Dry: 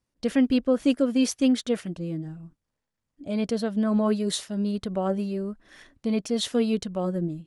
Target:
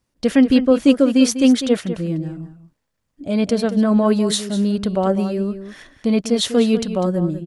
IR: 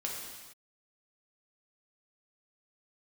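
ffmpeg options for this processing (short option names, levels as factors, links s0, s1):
-filter_complex "[0:a]asplit=2[s0][s1];[s1]adelay=198.3,volume=0.282,highshelf=f=4000:g=-4.46[s2];[s0][s2]amix=inputs=2:normalize=0,volume=2.51"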